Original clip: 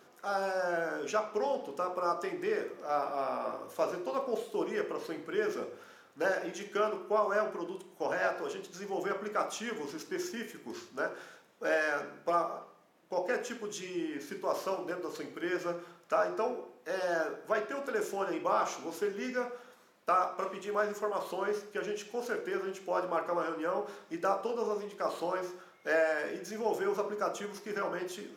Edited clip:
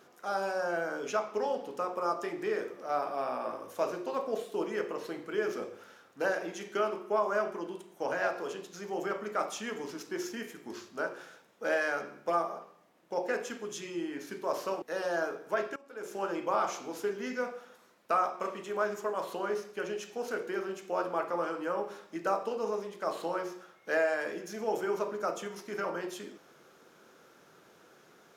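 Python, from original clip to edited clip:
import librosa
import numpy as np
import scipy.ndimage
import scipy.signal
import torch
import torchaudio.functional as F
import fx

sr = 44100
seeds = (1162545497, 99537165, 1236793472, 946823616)

y = fx.edit(x, sr, fx.cut(start_s=14.82, length_s=1.98),
    fx.fade_in_from(start_s=17.74, length_s=0.46, curve='qua', floor_db=-19.5), tone=tone)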